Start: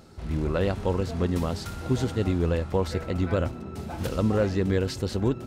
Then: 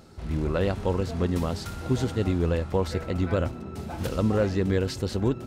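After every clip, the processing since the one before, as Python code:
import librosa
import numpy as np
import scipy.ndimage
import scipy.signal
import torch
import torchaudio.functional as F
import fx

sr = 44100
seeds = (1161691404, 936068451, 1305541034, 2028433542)

y = x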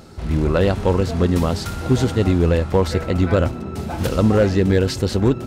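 y = np.clip(x, -10.0 ** (-16.0 / 20.0), 10.0 ** (-16.0 / 20.0))
y = F.gain(torch.from_numpy(y), 8.5).numpy()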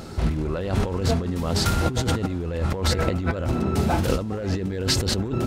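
y = fx.over_compress(x, sr, threshold_db=-24.0, ratio=-1.0)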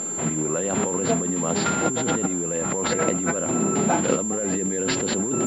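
y = scipy.signal.sosfilt(scipy.signal.butter(4, 170.0, 'highpass', fs=sr, output='sos'), x)
y = fx.pwm(y, sr, carrier_hz=7300.0)
y = F.gain(torch.from_numpy(y), 2.5).numpy()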